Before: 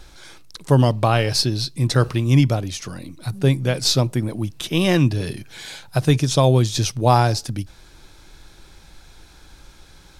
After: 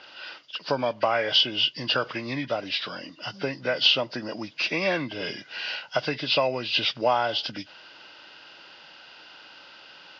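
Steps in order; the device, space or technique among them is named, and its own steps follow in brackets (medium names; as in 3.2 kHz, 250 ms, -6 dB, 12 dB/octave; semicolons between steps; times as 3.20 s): bass shelf 150 Hz -7.5 dB; hearing aid with frequency lowering (knee-point frequency compression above 1.4 kHz 1.5:1; compression 3:1, threshold -23 dBFS, peak gain reduction 10 dB; cabinet simulation 280–5400 Hz, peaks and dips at 370 Hz -5 dB, 600 Hz +6 dB, 980 Hz +3 dB, 1.5 kHz +8 dB, 2.9 kHz +7 dB, 4.8 kHz +10 dB)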